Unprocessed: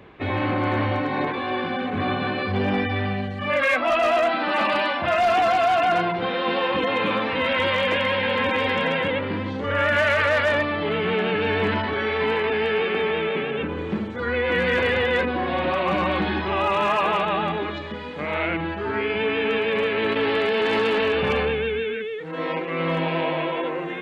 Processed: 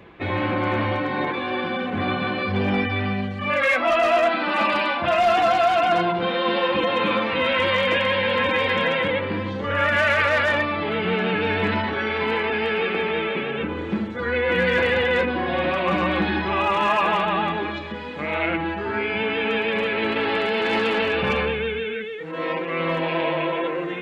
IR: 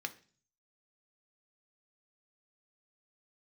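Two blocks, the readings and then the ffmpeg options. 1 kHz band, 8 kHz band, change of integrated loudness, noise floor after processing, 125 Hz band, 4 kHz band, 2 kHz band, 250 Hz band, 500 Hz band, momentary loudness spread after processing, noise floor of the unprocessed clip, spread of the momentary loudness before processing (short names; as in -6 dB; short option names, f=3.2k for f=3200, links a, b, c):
+1.0 dB, n/a, +0.5 dB, -30 dBFS, 0.0 dB, +1.0 dB, +1.5 dB, +1.0 dB, 0.0 dB, 8 LU, -30 dBFS, 8 LU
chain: -filter_complex "[0:a]asplit=2[a][b];[1:a]atrim=start_sample=2205,adelay=6[c];[b][c]afir=irnorm=-1:irlink=0,volume=-6dB[d];[a][d]amix=inputs=2:normalize=0"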